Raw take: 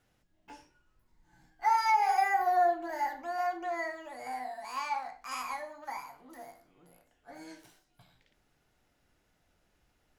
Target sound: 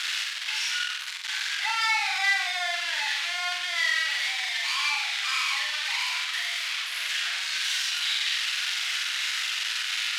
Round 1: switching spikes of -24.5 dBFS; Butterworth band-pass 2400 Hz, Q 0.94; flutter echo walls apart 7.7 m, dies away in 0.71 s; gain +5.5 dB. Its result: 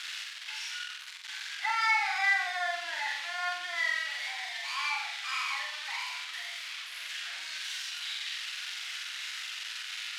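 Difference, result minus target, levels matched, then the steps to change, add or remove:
switching spikes: distortion -10 dB
change: switching spikes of -14.5 dBFS

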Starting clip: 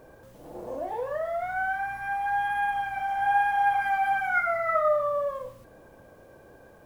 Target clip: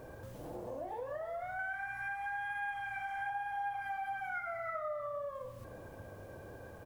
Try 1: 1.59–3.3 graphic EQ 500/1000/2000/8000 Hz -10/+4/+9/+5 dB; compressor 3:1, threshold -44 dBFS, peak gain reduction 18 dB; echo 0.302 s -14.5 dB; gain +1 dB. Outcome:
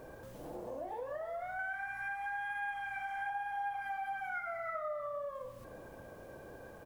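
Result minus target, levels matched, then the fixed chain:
125 Hz band -5.5 dB
1.59–3.3 graphic EQ 500/1000/2000/8000 Hz -10/+4/+9/+5 dB; compressor 3:1, threshold -44 dBFS, peak gain reduction 18 dB; bell 95 Hz +10 dB 0.68 oct; echo 0.302 s -14.5 dB; gain +1 dB

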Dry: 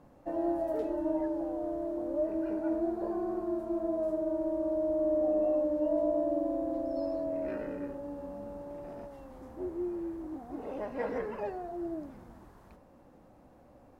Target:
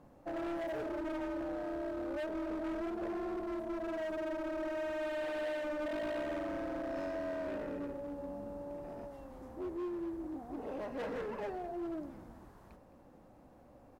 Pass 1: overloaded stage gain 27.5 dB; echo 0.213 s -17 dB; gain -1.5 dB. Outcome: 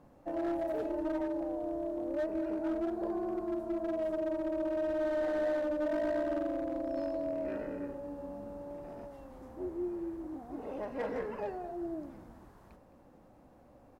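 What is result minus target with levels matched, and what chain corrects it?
overloaded stage: distortion -8 dB
overloaded stage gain 34.5 dB; echo 0.213 s -17 dB; gain -1.5 dB

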